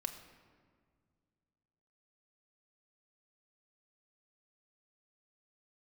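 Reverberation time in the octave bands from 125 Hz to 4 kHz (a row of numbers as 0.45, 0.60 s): 2.9, 2.6, 2.1, 1.7, 1.4, 1.0 s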